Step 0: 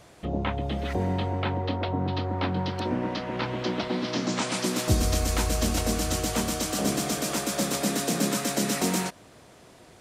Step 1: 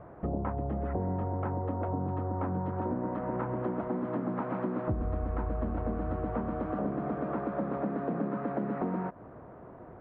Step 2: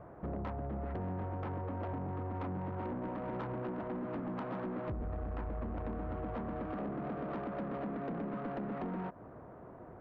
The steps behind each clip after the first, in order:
inverse Chebyshev low-pass filter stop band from 7,300 Hz, stop band 80 dB; downward compressor 4 to 1, threshold −35 dBFS, peak gain reduction 15 dB; level +4.5 dB
soft clipping −31.5 dBFS, distortion −12 dB; level −2.5 dB

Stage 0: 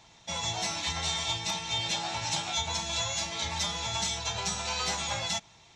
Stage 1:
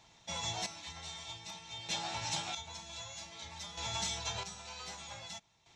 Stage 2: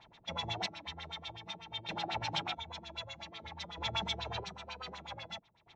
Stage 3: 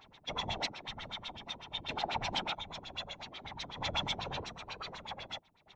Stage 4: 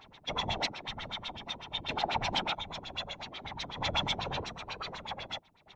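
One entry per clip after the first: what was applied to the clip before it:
square-wave tremolo 0.53 Hz, depth 65%, duty 35%; level −5.5 dB
auto-filter low-pass sine 8.1 Hz 290–3,900 Hz; level +1 dB
random phases in short frames; level +1 dB
high-shelf EQ 6,900 Hz −4 dB; level +4 dB

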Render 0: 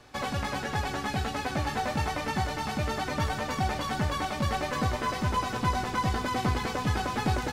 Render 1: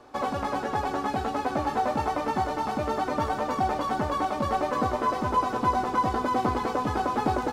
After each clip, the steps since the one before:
flat-topped bell 560 Hz +11 dB 2.8 octaves
level −5.5 dB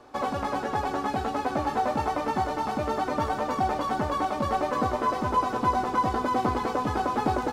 no processing that can be heard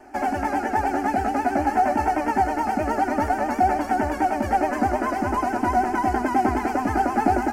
phaser with its sweep stopped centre 740 Hz, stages 8
pitch vibrato 9.3 Hz 68 cents
level +7.5 dB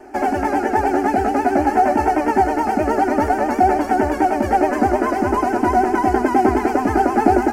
parametric band 400 Hz +8 dB 0.63 octaves
level +3.5 dB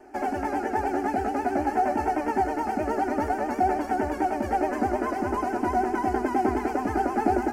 convolution reverb RT60 1.7 s, pre-delay 3 ms, DRR 18 dB
level −9 dB

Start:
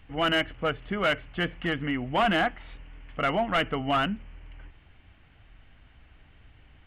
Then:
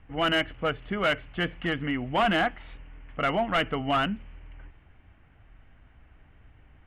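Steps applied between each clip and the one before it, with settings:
low-pass that shuts in the quiet parts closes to 1,800 Hz, open at −24 dBFS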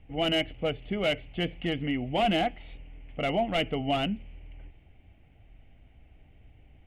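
flat-topped bell 1,300 Hz −13.5 dB 1.1 octaves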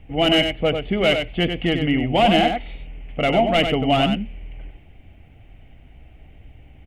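single-tap delay 95 ms −6.5 dB
level +9 dB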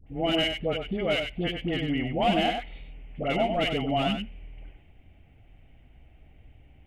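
all-pass dispersion highs, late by 71 ms, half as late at 850 Hz
level −8 dB

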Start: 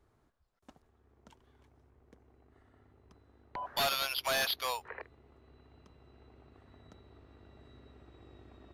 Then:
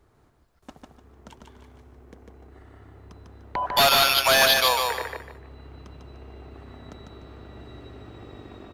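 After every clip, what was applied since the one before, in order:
automatic gain control gain up to 4 dB
on a send: repeating echo 149 ms, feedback 30%, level −3.5 dB
on the sum: level +8.5 dB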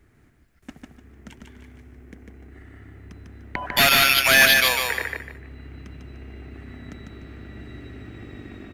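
octave-band graphic EQ 250/500/1,000/2,000/4,000 Hz +4/−6/−11/+9/−6 dB
level +4 dB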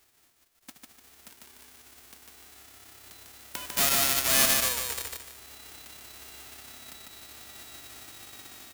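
spectral envelope flattened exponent 0.1
level −7.5 dB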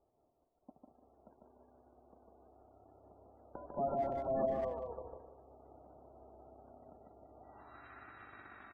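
low-pass filter sweep 640 Hz → 1,500 Hz, 0:07.36–0:07.87
gate on every frequency bin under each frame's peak −20 dB strong
far-end echo of a speakerphone 190 ms, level −8 dB
level −5 dB

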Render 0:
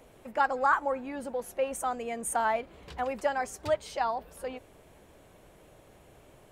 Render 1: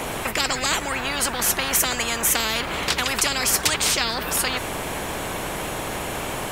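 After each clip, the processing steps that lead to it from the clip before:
every bin compressed towards the loudest bin 10 to 1
level +8 dB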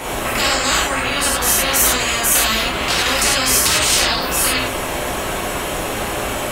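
reverb whose tail is shaped and stops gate 130 ms flat, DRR −6.5 dB
level −1 dB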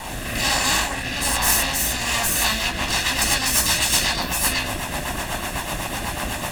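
lower of the sound and its delayed copy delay 1.1 ms
rotating-speaker cabinet horn 1.2 Hz, later 8 Hz, at 0:01.99

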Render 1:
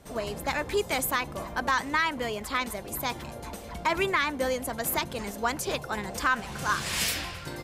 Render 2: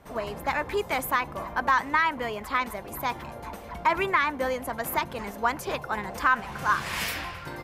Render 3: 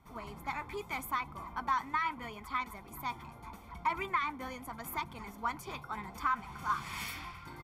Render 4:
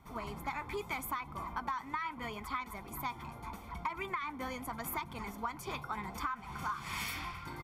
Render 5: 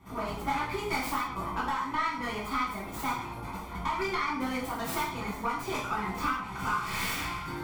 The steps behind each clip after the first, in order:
octave-band graphic EQ 1,000/2,000/4,000/8,000 Hz +6/+3/−3/−7 dB; level −1.5 dB
comb filter 0.9 ms, depth 69%; flanger 0.78 Hz, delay 0.9 ms, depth 7.8 ms, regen −70%; level −7.5 dB
downward compressor 12 to 1, threshold −37 dBFS, peak gain reduction 12 dB; level +3.5 dB
stylus tracing distortion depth 0.28 ms; reverb whose tail is shaped and stops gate 200 ms falling, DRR −8 dB; level −1 dB

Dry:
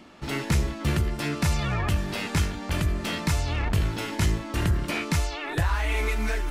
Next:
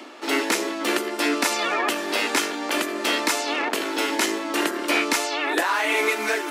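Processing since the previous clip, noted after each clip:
Butterworth high-pass 270 Hz 48 dB per octave
reversed playback
upward compression, threshold −39 dBFS
reversed playback
level +8.5 dB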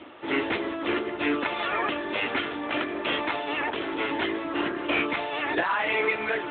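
level −2 dB
AMR narrowband 10.2 kbit/s 8,000 Hz

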